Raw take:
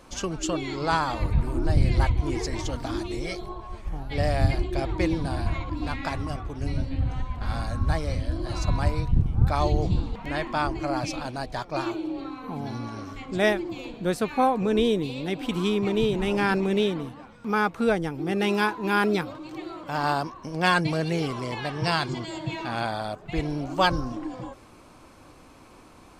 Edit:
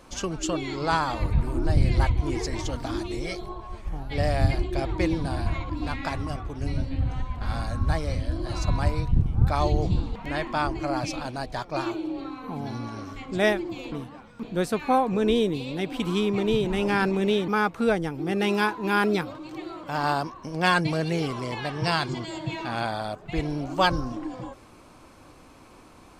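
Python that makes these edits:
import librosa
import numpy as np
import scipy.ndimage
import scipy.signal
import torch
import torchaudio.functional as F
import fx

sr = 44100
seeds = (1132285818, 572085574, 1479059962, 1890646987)

y = fx.edit(x, sr, fx.move(start_s=16.97, length_s=0.51, to_s=13.92), tone=tone)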